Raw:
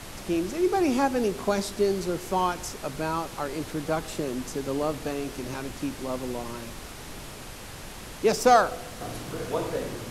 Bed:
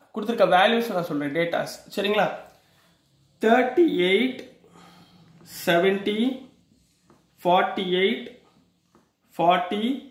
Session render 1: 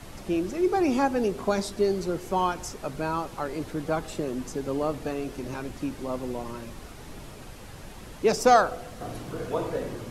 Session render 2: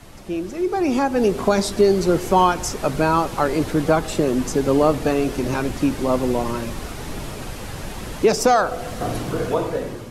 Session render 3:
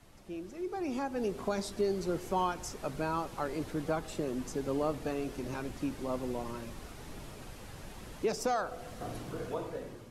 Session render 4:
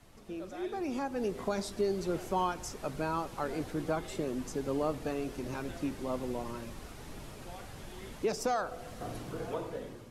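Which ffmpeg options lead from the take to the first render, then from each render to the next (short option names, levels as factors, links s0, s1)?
-af "afftdn=nr=7:nf=-41"
-af "alimiter=limit=0.133:level=0:latency=1:release=348,dynaudnorm=f=280:g=7:m=3.98"
-af "volume=0.168"
-filter_complex "[1:a]volume=0.0316[s0];[0:a][s0]amix=inputs=2:normalize=0"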